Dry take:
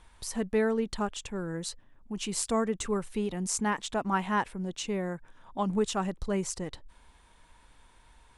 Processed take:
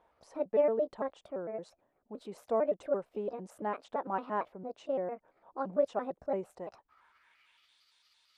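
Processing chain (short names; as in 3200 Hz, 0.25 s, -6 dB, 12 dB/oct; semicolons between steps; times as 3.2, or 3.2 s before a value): trilling pitch shifter +5 st, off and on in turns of 0.113 s; band-pass sweep 590 Hz -> 4200 Hz, 6.51–7.79; gain +3.5 dB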